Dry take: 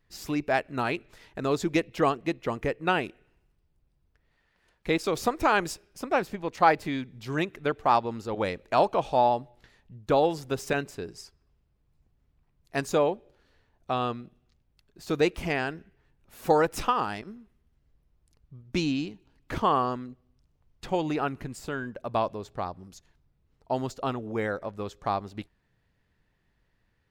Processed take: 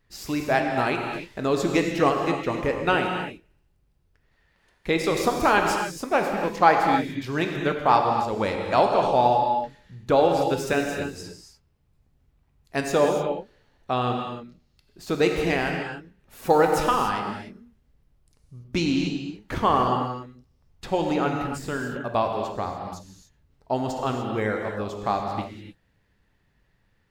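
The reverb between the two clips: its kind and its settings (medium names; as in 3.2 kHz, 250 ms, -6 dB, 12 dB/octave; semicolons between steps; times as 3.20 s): gated-style reverb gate 320 ms flat, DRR 2 dB; trim +2.5 dB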